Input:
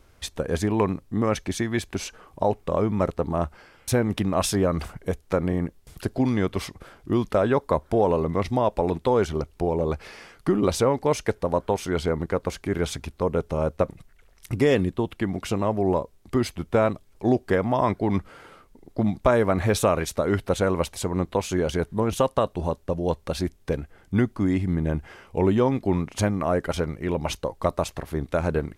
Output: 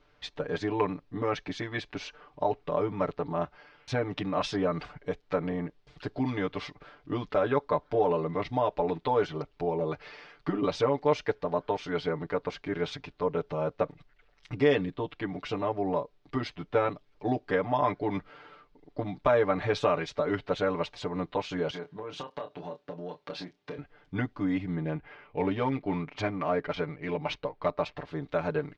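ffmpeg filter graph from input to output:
-filter_complex "[0:a]asettb=1/sr,asplit=3[a][b][c];[a]atrim=end=21.704[d];[b]atrim=start=21.7:end=23.78,asetpts=PTS-STARTPTS,afade=t=in:d=0.004:c=qsin,afade=t=out:st=2.076:d=0.004:c=qsin,highpass=150,acompressor=threshold=-28dB:ratio=8:attack=3.2:release=140:knee=1:detection=peak,asplit=2[e][f];[f]adelay=28,volume=-8dB[g];[e][g]amix=inputs=2:normalize=0,atrim=end_sample=91728[h];[c]atrim=start=23.776[i];[d][h]acrossfade=d=0.004:c1=hsin:c2=qsin[j];[j][i]acrossfade=d=0.004:c1=qsin:c2=hsin,asettb=1/sr,asplit=3[k][l][m];[k]atrim=end=24.834[n];[l]atrim=start=24.83:end=27.97,asetpts=PTS-STARTPTS,afade=t=in:d=0.004:c=qsin,afade=t=out:st=3.136:d=0.004:c=qsin,equalizer=f=2.3k:w=7.5:g=6.5,adynamicsmooth=sensitivity=6:basefreq=3.2k[o];[m]atrim=start=27.966[p];[n][o]acrossfade=d=0.004:c1=hsin:c2=qsin[q];[q][p]acrossfade=d=0.004:c1=qsin:c2=hsin,lowpass=f=4.5k:w=0.5412,lowpass=f=4.5k:w=1.3066,lowshelf=f=260:g=-8,aecho=1:1:6.8:0.99,volume=-6dB"

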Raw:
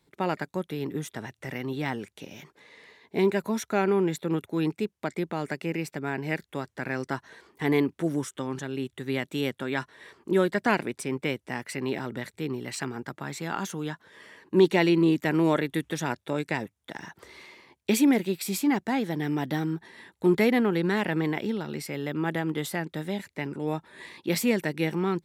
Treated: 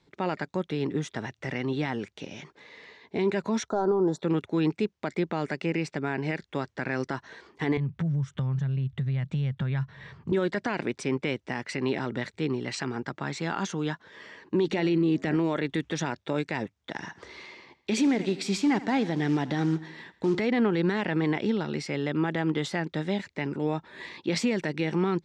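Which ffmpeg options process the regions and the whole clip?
-filter_complex "[0:a]asettb=1/sr,asplit=3[a][b][c];[a]atrim=end=3.684[d];[b]atrim=start=3.68:end=4.22,asetpts=PTS-STARTPTS,afade=t=in:d=0.004:c=qsin,afade=t=out:st=0.536:d=0.004:c=qsin,asplit=2[e][f];[f]highpass=f=720:p=1,volume=12dB,asoftclip=type=tanh:threshold=-11.5dB[g];[e][g]amix=inputs=2:normalize=0,lowpass=f=2.1k:p=1,volume=-6dB,asuperstop=centerf=2400:order=4:qfactor=0.56[h];[c]atrim=start=4.216[i];[d][h]acrossfade=d=0.004:c1=hsin:c2=qsin[j];[j][i]acrossfade=d=0.004:c1=qsin:c2=hsin,asettb=1/sr,asplit=3[k][l][m];[k]atrim=end=7.774[n];[l]atrim=start=7.77:end=10.32,asetpts=PTS-STARTPTS,afade=t=in:d=0.004:c=qsin,afade=t=out:st=2.546:d=0.004:c=qsin,lowpass=f=3.3k:p=1,lowshelf=f=210:t=q:w=3:g=13.5,acompressor=threshold=-29dB:ratio=6:attack=3.2:release=140:knee=1:detection=peak[o];[m]atrim=start=10.316[p];[n][o]acrossfade=d=0.004:c1=hsin:c2=qsin[q];[q][p]acrossfade=d=0.004:c1=qsin:c2=hsin,asettb=1/sr,asplit=3[r][s][t];[r]atrim=end=14.674[u];[s]atrim=start=14.67:end=15.37,asetpts=PTS-STARTPTS,afade=t=in:d=0.004:c=qsin,afade=t=out:st=0.696:d=0.004:c=qsin,lowshelf=f=480:g=4,bandreject=f=980:w=11,bandreject=f=91.27:t=h:w=4,bandreject=f=182.54:t=h:w=4,bandreject=f=273.81:t=h:w=4,bandreject=f=365.08:t=h:w=4,bandreject=f=456.35:t=h:w=4,bandreject=f=547.62:t=h:w=4,bandreject=f=638.89:t=h:w=4,bandreject=f=730.16:t=h:w=4,bandreject=f=821.43:t=h:w=4,bandreject=f=912.7:t=h:w=4,bandreject=f=1.00397k:t=h:w=4,bandreject=f=1.09524k:t=h:w=4,bandreject=f=1.18651k:t=h:w=4,bandreject=f=1.27778k:t=h:w=4,bandreject=f=1.36905k:t=h:w=4,bandreject=f=1.46032k:t=h:w=4,bandreject=f=1.55159k:t=h:w=4,bandreject=f=1.64286k:t=h:w=4,bandreject=f=1.73413k:t=h:w=4,bandreject=f=1.8254k:t=h:w=4,bandreject=f=1.91667k:t=h:w=4[v];[t]atrim=start=15.366[w];[u][v]acrossfade=d=0.004:c1=hsin:c2=qsin[x];[x][w]acrossfade=d=0.004:c1=qsin:c2=hsin,asettb=1/sr,asplit=3[y][z][aa];[y]atrim=end=16.974[ab];[z]atrim=start=16.97:end=20.4,asetpts=PTS-STARTPTS,afade=t=in:d=0.004:c=qsin,afade=t=out:st=3.426:d=0.004:c=qsin,acrusher=bits=6:mode=log:mix=0:aa=0.000001,aecho=1:1:82|164|246|328:0.106|0.0572|0.0309|0.0167,atrim=end_sample=151263[ac];[aa]atrim=start=20.396[ad];[ab][ac]acrossfade=d=0.004:c1=hsin:c2=qsin[ae];[ae][ad]acrossfade=d=0.004:c1=qsin:c2=hsin,lowpass=f=6.4k:w=0.5412,lowpass=f=6.4k:w=1.3066,alimiter=limit=-20dB:level=0:latency=1:release=58,volume=3dB"

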